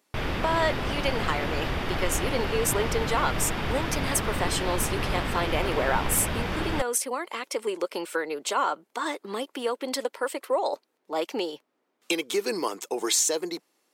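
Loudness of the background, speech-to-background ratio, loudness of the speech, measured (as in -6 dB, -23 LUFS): -30.0 LUFS, 1.5 dB, -28.5 LUFS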